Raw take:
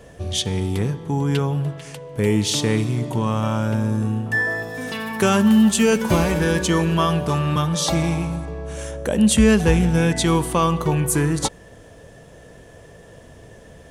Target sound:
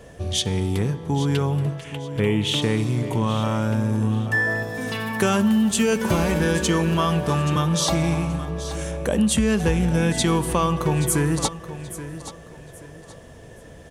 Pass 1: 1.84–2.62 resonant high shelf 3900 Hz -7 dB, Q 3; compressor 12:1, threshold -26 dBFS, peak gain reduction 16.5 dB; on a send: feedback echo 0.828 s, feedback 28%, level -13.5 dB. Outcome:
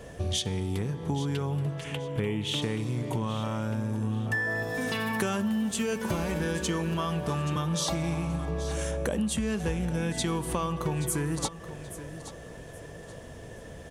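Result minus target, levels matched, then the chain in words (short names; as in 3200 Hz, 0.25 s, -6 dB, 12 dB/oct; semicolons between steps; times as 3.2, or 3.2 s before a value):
compressor: peak gain reduction +9.5 dB
1.84–2.62 resonant high shelf 3900 Hz -7 dB, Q 3; compressor 12:1, threshold -15.5 dBFS, peak gain reduction 7 dB; on a send: feedback echo 0.828 s, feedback 28%, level -13.5 dB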